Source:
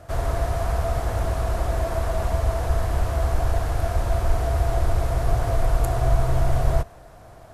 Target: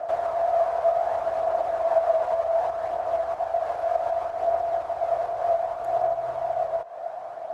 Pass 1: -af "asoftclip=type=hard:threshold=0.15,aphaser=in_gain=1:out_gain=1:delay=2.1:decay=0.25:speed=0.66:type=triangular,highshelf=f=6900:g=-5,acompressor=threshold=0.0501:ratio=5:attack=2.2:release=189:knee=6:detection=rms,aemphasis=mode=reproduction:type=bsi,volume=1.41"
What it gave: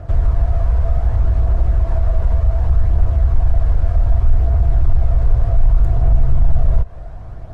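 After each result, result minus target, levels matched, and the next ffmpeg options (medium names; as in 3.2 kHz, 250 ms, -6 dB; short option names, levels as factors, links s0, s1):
hard clipper: distortion +38 dB; 500 Hz band -18.5 dB
-af "asoftclip=type=hard:threshold=0.422,aphaser=in_gain=1:out_gain=1:delay=2.1:decay=0.25:speed=0.66:type=triangular,highshelf=f=6900:g=-5,acompressor=threshold=0.0501:ratio=5:attack=2.2:release=189:knee=6:detection=rms,aemphasis=mode=reproduction:type=bsi,volume=1.41"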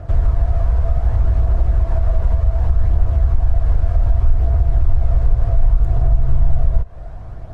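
500 Hz band -18.0 dB
-af "asoftclip=type=hard:threshold=0.422,aphaser=in_gain=1:out_gain=1:delay=2.1:decay=0.25:speed=0.66:type=triangular,highshelf=f=6900:g=-5,acompressor=threshold=0.0501:ratio=5:attack=2.2:release=189:knee=6:detection=rms,highpass=f=680:t=q:w=4.5,aemphasis=mode=reproduction:type=bsi,volume=1.41"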